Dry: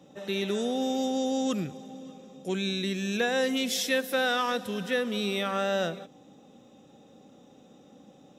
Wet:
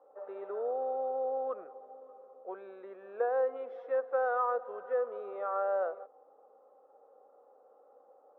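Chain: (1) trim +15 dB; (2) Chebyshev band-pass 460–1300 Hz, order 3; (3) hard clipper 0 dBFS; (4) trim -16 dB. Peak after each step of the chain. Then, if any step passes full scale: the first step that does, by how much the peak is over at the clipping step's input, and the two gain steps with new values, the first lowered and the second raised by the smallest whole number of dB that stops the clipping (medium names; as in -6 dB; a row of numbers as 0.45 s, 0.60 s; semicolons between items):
-1.0 dBFS, -4.5 dBFS, -4.5 dBFS, -20.5 dBFS; nothing clips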